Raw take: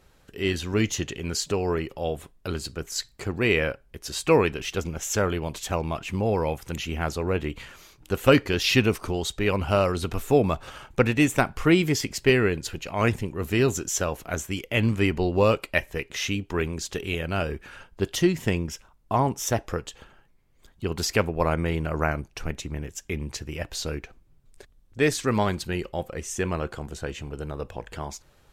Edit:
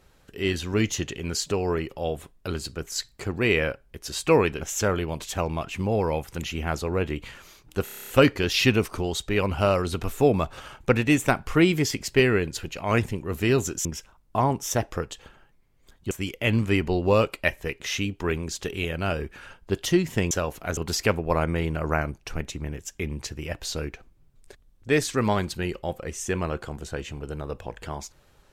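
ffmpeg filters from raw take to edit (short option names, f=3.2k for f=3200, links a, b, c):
-filter_complex "[0:a]asplit=14[a][b][c][d][e][f][g][h][i][j][k][l][m][n];[a]atrim=end=4.612[o];[b]atrim=start=4.948:end=8.212[p];[c]atrim=start=8.178:end=8.212[q];[d]atrim=start=8.178:end=8.212[r];[e]atrim=start=8.178:end=8.212[s];[f]atrim=start=8.178:end=8.212[t];[g]atrim=start=8.178:end=8.212[u];[h]atrim=start=8.178:end=8.212[v];[i]atrim=start=8.178:end=8.212[w];[j]atrim=start=8.178:end=13.952[x];[k]atrim=start=18.608:end=20.872[y];[l]atrim=start=14.408:end=18.612[z];[m]atrim=start=13.948:end=14.412[aa];[n]atrim=start=20.868[ab];[o][p]acrossfade=d=0.004:c1=hsin:c2=hsin[ac];[ac][q]acrossfade=d=0.004:c1=hsin:c2=hsin[ad];[ad][r]acrossfade=d=0.004:c1=hsin:c2=hsin[ae];[ae][s]acrossfade=d=0.004:c1=hsin:c2=hsin[af];[af][t]acrossfade=d=0.004:c1=hsin:c2=hsin[ag];[ag][u]acrossfade=d=0.004:c1=hsin:c2=hsin[ah];[ah][v]acrossfade=d=0.004:c1=hsin:c2=hsin[ai];[ai][w]acrossfade=d=0.004:c1=hsin:c2=hsin[aj];[aj][x]acrossfade=d=0.004:c1=hsin:c2=hsin[ak];[ak][y]acrossfade=d=0.004:c1=hsin:c2=hsin[al];[al][z]acrossfade=d=0.004:c1=hsin:c2=hsin[am];[am][aa]acrossfade=d=0.004:c1=hsin:c2=hsin[an];[an][ab]acrossfade=d=0.004:c1=hsin:c2=hsin"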